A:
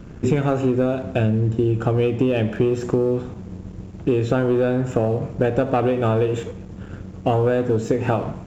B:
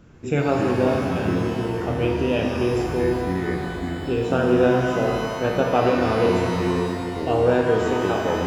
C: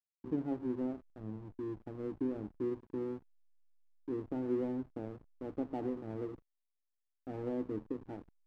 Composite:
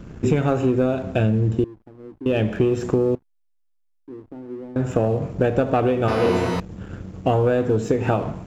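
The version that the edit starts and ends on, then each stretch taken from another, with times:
A
1.64–2.26 s: from C
3.15–4.76 s: from C
6.08–6.60 s: from B

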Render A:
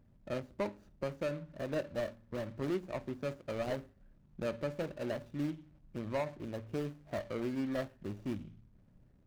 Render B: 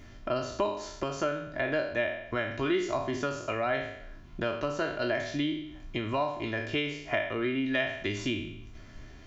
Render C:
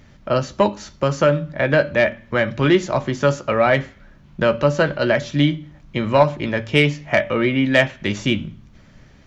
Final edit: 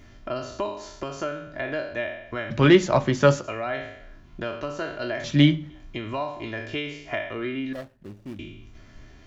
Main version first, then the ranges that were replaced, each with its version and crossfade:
B
2.50–3.44 s: from C
5.24–5.70 s: from C
7.73–8.39 s: from A

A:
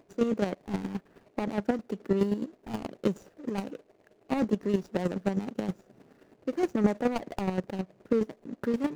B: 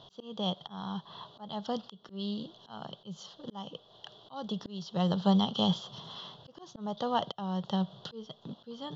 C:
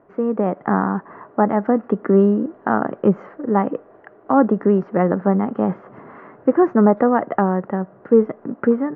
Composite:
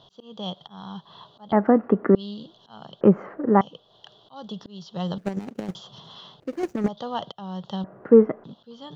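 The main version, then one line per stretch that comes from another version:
B
1.52–2.15 s: from C
3.01–3.61 s: from C
5.18–5.75 s: from A
6.40–6.88 s: from A
7.84–8.44 s: from C

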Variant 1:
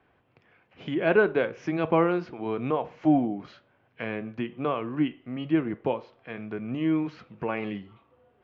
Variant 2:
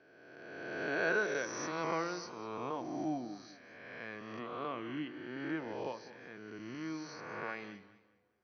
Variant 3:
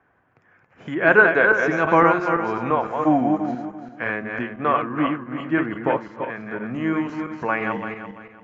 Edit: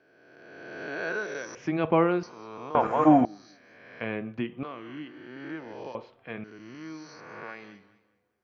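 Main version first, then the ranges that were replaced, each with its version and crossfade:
2
1.55–2.23 s: from 1
2.75–3.25 s: from 3
4.01–4.63 s: from 1
5.95–6.44 s: from 1

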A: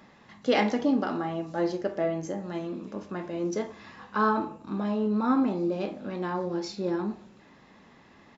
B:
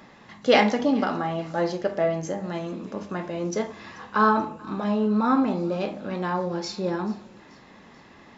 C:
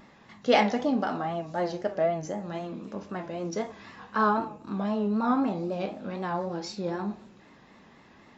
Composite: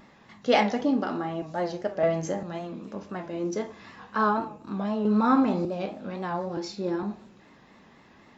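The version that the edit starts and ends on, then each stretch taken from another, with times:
C
0.81–1.42 s: from A
2.03–2.43 s: from B
3.29–3.82 s: from A
5.05–5.65 s: from B
6.57–7.03 s: from A

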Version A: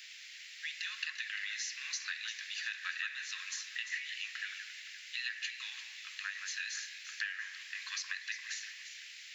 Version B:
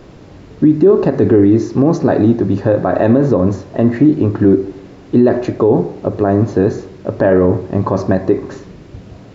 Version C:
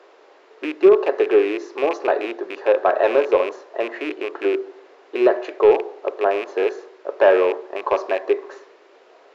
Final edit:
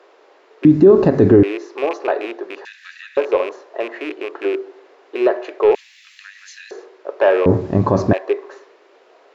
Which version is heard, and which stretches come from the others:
C
0.65–1.43 s: from B
2.65–3.17 s: from A
5.75–6.71 s: from A
7.46–8.13 s: from B

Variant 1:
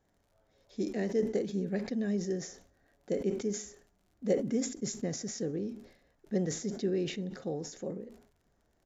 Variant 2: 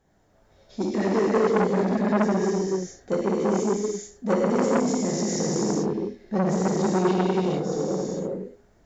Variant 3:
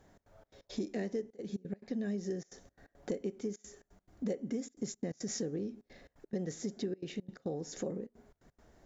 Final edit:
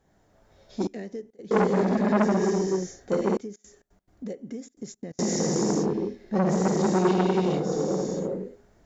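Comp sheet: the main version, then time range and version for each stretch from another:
2
0.87–1.51 s: from 3
3.37–5.19 s: from 3
not used: 1

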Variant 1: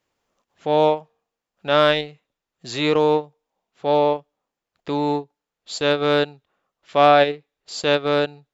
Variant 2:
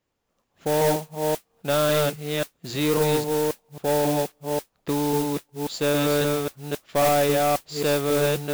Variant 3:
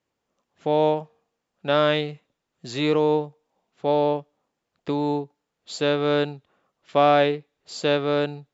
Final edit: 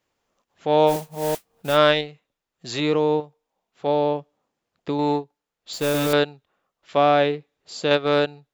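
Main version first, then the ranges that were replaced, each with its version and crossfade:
1
0.91–1.74 s: from 2, crossfade 0.10 s
2.80–3.20 s: from 3
3.87–4.99 s: from 3
5.73–6.13 s: from 2
6.97–7.91 s: from 3

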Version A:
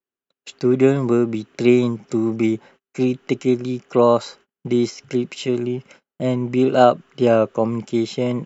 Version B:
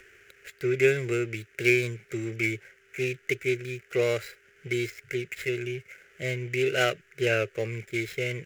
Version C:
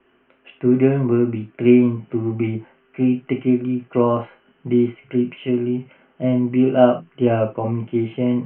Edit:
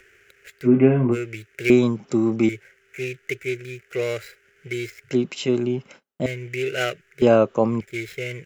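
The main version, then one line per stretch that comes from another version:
B
0.66–1.14 s: from C, crossfade 0.06 s
1.70–2.49 s: from A
5.11–6.26 s: from A
7.22–7.81 s: from A

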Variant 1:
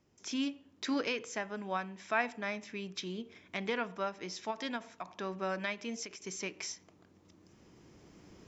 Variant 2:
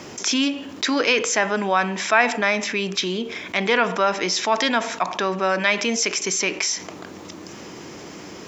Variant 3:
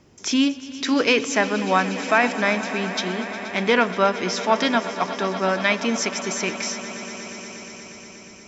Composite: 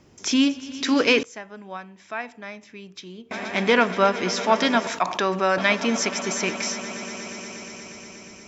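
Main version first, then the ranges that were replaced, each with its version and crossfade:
3
1.23–3.31 s: from 1
4.87–5.58 s: from 2

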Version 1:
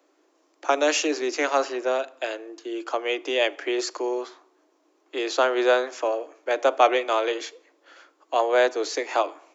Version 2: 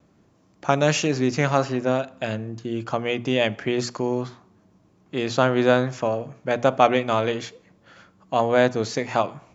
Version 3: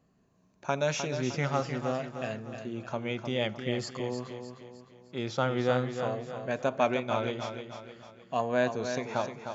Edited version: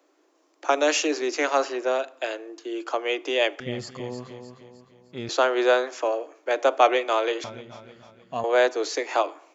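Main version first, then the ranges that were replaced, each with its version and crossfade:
1
3.60–5.29 s: from 3
7.44–8.44 s: from 3
not used: 2

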